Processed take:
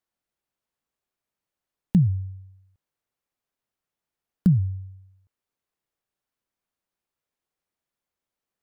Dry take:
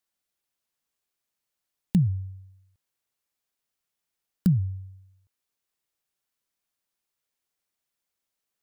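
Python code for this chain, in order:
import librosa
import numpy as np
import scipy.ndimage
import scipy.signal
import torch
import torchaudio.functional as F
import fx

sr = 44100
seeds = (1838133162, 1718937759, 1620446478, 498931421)

y = fx.high_shelf(x, sr, hz=2200.0, db=-11.0)
y = F.gain(torch.from_numpy(y), 3.0).numpy()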